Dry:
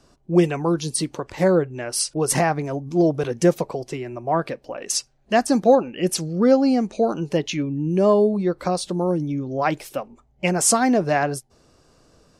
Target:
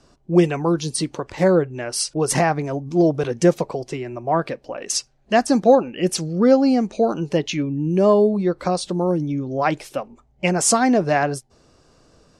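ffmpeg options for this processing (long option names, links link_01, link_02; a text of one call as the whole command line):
ffmpeg -i in.wav -af "lowpass=9200,volume=1.5dB" out.wav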